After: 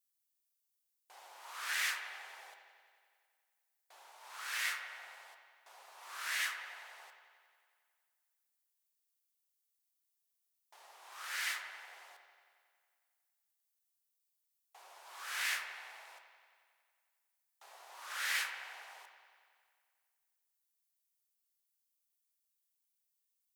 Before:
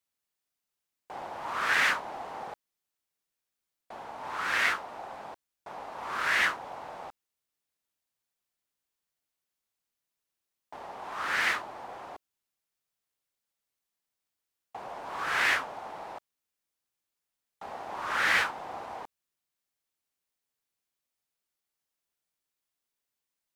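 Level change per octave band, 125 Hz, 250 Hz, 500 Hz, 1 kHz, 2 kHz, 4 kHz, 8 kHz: below −40 dB, below −30 dB, −20.5 dB, −15.0 dB, −10.5 dB, −5.5 dB, 0.0 dB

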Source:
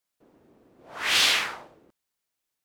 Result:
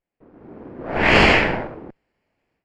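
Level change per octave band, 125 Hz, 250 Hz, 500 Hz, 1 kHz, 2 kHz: +27.5, +24.5, +21.0, +12.5, +9.0 decibels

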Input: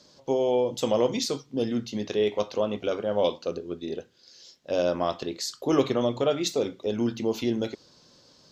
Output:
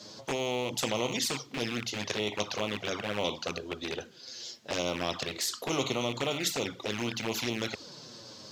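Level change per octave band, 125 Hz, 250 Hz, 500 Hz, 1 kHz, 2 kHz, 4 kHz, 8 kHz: −3.0, −7.5, −9.0, −3.0, +6.5, +2.5, +3.0 decibels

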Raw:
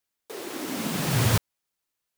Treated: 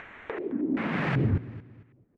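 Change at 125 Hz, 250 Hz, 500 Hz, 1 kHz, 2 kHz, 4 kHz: −2.5, +2.5, 0.0, −3.0, −0.5, −14.5 decibels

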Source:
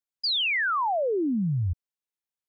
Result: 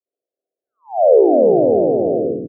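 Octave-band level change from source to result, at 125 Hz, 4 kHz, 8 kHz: −3.0 dB, below −40 dB, can't be measured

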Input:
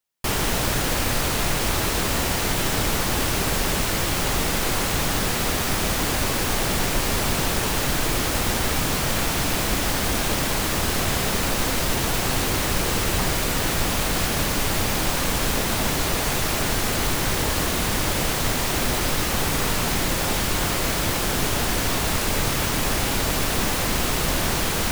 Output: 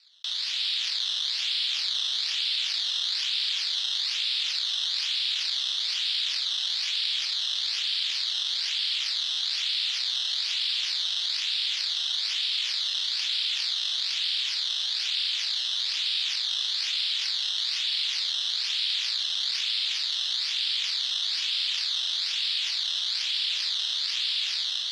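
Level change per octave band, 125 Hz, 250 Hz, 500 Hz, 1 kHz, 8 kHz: below −40 dB, below −40 dB, below −35 dB, −24.0 dB, −13.5 dB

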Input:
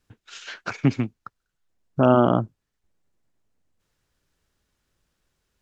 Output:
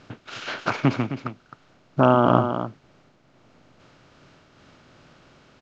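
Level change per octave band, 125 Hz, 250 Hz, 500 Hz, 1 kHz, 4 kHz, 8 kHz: +0.5 dB, −0.5 dB, +0.5 dB, +4.0 dB, +4.5 dB, can't be measured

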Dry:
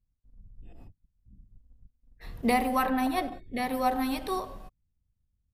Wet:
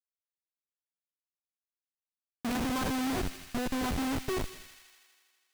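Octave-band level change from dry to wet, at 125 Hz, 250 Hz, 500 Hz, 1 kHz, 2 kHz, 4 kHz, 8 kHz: +6.5, −2.5, −5.0, −9.5, −3.5, +1.0, +4.0 decibels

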